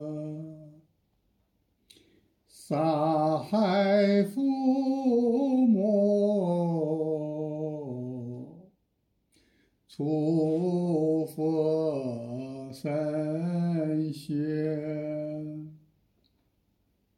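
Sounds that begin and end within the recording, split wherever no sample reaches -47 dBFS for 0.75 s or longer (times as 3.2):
1.9–8.65
9.9–15.75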